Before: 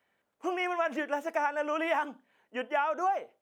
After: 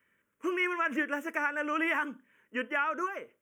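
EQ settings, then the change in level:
phaser with its sweep stopped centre 1,800 Hz, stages 4
+5.0 dB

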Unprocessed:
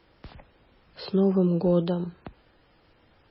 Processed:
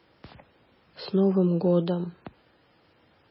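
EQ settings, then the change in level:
high-pass filter 97 Hz 12 dB per octave
0.0 dB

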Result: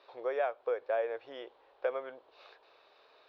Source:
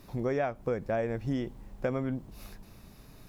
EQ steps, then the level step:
elliptic band-pass filter 470–3,900 Hz, stop band 40 dB
parametric band 2,000 Hz −5.5 dB 0.26 octaves
0.0 dB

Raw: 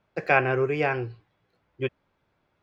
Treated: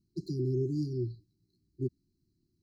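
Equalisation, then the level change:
linear-phase brick-wall band-stop 390–3,900 Hz
0.0 dB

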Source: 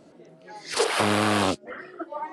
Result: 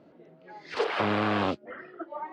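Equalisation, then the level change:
high-pass filter 54 Hz
low-pass filter 3,300 Hz 12 dB per octave
high-frequency loss of the air 65 metres
−3.5 dB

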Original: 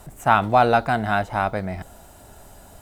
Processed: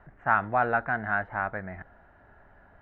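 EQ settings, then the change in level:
transistor ladder low-pass 1,900 Hz, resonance 65%
0.0 dB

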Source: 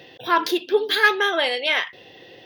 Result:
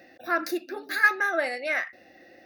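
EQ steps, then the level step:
phaser with its sweep stopped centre 650 Hz, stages 8
−2.5 dB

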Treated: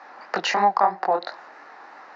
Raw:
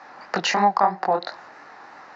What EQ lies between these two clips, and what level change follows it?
high-pass filter 280 Hz 12 dB per octave
high-shelf EQ 6,400 Hz −9 dB
0.0 dB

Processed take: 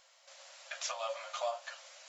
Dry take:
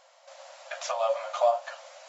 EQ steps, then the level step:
parametric band 660 Hz −13.5 dB 1.9 octaves
0.0 dB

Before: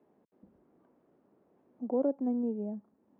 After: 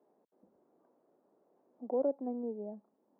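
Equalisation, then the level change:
resonant band-pass 650 Hz, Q 1
0.0 dB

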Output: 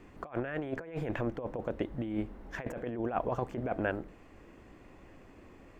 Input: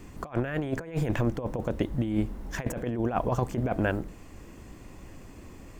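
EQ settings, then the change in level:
bass and treble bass −8 dB, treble −15 dB
parametric band 1,000 Hz −2.5 dB 0.39 octaves
−3.0 dB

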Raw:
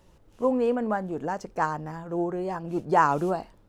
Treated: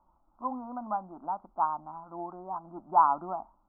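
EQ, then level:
elliptic low-pass filter 1,400 Hz, stop band 50 dB
low shelf with overshoot 670 Hz −10 dB, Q 1.5
phaser with its sweep stopped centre 460 Hz, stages 6
0.0 dB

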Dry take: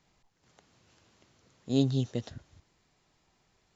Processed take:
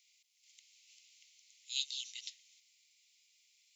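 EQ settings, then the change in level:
Butterworth high-pass 2,100 Hz 96 dB per octave
high-shelf EQ 4,200 Hz +7 dB
+2.0 dB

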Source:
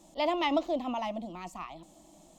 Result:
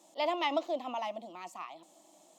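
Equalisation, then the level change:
high-pass filter 400 Hz 12 dB per octave
−1.5 dB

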